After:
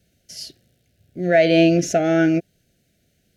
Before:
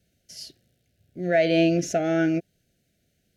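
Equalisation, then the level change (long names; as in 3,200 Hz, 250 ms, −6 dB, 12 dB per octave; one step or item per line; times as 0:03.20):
no EQ move
+5.5 dB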